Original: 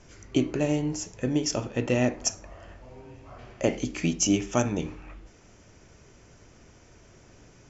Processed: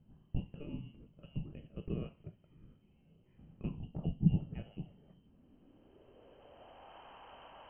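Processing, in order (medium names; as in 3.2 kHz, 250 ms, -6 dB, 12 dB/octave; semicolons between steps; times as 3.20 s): frequency inversion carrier 3.1 kHz; low-pass sweep 170 Hz -> 890 Hz, 5.07–6.99 s; trim +8 dB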